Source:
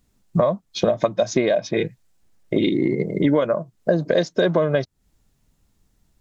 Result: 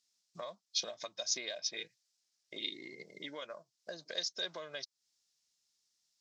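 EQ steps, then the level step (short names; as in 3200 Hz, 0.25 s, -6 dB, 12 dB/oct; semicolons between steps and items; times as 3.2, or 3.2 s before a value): band-pass 5200 Hz, Q 2.8; +2.0 dB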